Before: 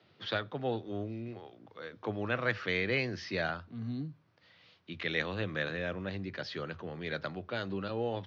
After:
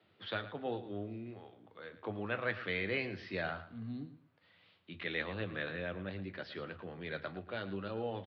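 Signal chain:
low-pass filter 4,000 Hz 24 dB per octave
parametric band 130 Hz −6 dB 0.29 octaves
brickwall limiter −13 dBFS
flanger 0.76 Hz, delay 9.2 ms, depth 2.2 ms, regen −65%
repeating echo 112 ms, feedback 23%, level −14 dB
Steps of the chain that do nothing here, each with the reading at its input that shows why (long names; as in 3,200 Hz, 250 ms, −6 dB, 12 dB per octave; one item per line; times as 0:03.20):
brickwall limiter −13 dBFS: peak of its input −15.5 dBFS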